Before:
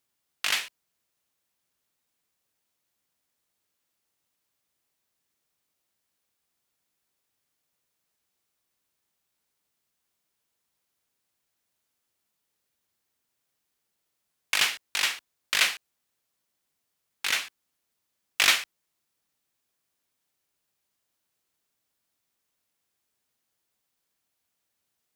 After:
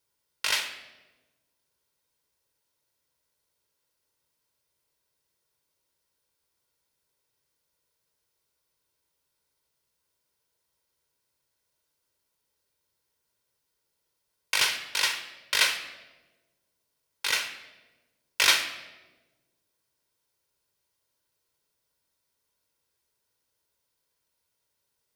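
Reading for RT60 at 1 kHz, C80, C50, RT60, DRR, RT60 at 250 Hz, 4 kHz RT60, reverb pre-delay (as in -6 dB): 1.0 s, 12.0 dB, 10.0 dB, 1.2 s, 7.0 dB, 1.6 s, 0.85 s, 3 ms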